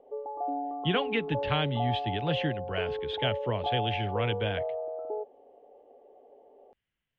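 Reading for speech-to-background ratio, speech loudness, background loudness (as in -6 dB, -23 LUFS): 3.0 dB, -31.5 LUFS, -34.5 LUFS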